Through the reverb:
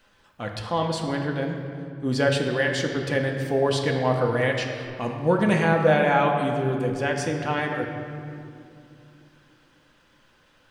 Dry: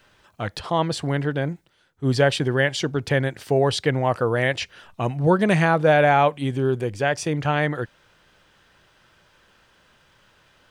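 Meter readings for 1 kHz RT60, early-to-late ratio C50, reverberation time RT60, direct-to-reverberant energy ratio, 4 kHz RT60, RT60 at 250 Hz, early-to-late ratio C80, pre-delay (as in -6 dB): 2.4 s, 5.0 dB, 2.6 s, 1.0 dB, 1.6 s, 4.1 s, 6.0 dB, 4 ms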